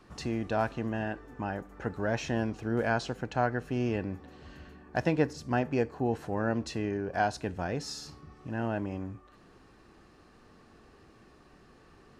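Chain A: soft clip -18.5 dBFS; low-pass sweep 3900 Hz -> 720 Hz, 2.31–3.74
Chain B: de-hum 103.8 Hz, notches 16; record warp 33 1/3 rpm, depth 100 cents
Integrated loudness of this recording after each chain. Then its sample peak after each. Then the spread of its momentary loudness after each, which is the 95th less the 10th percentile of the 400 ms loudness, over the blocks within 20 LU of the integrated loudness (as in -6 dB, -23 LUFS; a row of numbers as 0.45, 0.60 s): -31.0, -33.0 LUFS; -14.0, -13.5 dBFS; 15, 12 LU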